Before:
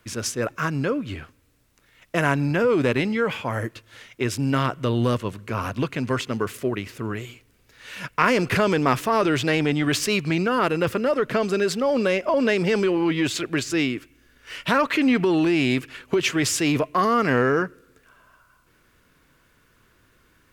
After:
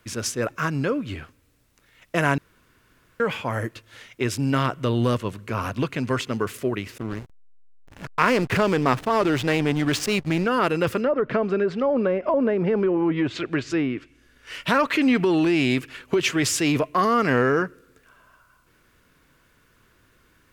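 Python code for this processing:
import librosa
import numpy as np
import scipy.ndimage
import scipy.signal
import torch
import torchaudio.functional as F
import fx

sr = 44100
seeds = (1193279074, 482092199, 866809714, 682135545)

y = fx.backlash(x, sr, play_db=-25.0, at=(6.98, 10.45))
y = fx.env_lowpass_down(y, sr, base_hz=1000.0, full_db=-16.5, at=(11.0, 14.54))
y = fx.edit(y, sr, fx.room_tone_fill(start_s=2.38, length_s=0.82), tone=tone)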